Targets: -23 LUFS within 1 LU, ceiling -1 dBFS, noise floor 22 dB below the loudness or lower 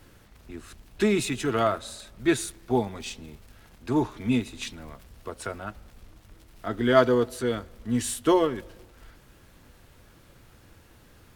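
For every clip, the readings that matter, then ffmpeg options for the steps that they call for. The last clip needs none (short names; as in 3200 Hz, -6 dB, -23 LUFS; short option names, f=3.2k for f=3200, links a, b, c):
loudness -26.5 LUFS; peak -6.0 dBFS; loudness target -23.0 LUFS
-> -af "volume=3.5dB"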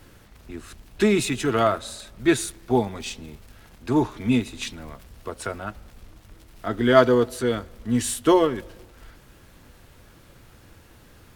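loudness -23.0 LUFS; peak -2.5 dBFS; noise floor -52 dBFS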